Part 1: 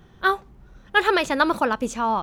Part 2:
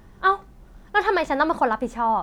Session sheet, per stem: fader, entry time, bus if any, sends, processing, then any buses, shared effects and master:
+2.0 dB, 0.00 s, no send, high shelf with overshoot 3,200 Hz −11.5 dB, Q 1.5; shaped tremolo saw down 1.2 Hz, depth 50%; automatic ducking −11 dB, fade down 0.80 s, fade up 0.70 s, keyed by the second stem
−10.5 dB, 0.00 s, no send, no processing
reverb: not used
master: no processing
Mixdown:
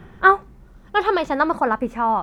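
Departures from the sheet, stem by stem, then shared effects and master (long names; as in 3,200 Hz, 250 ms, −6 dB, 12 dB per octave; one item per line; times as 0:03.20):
stem 1 +2.0 dB → +8.5 dB
stem 2 −10.5 dB → −3.0 dB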